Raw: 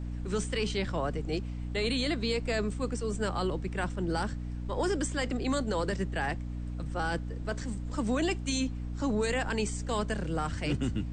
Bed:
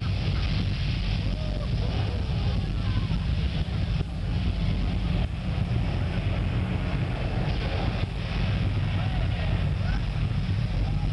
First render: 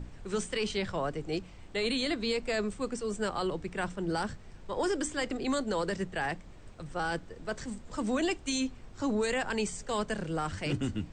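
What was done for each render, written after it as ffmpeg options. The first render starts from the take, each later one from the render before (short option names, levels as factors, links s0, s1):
-af "bandreject=f=60:t=h:w=6,bandreject=f=120:t=h:w=6,bandreject=f=180:t=h:w=6,bandreject=f=240:t=h:w=6,bandreject=f=300:t=h:w=6"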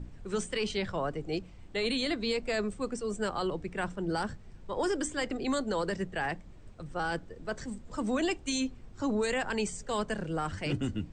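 -af "afftdn=nr=6:nf=-50"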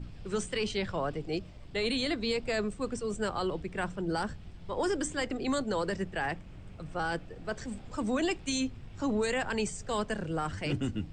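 -filter_complex "[1:a]volume=0.0631[s0];[0:a][s0]amix=inputs=2:normalize=0"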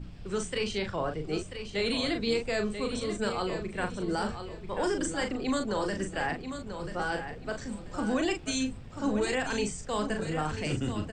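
-filter_complex "[0:a]asplit=2[s0][s1];[s1]adelay=39,volume=0.501[s2];[s0][s2]amix=inputs=2:normalize=0,aecho=1:1:988|1976|2964:0.355|0.0887|0.0222"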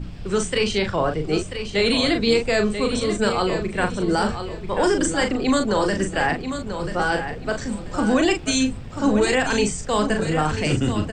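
-af "volume=3.16"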